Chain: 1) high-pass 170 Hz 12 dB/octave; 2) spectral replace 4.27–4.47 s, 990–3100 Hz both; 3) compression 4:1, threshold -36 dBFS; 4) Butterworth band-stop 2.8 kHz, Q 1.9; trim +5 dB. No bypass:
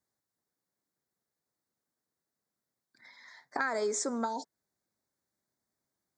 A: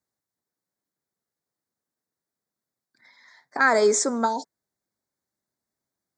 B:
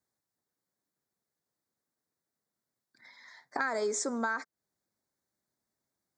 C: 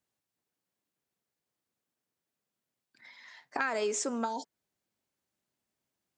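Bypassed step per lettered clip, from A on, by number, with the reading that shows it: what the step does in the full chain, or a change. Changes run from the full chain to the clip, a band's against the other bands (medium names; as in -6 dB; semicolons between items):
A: 3, mean gain reduction 7.5 dB; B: 2, 2 kHz band +3.0 dB; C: 4, momentary loudness spread change +3 LU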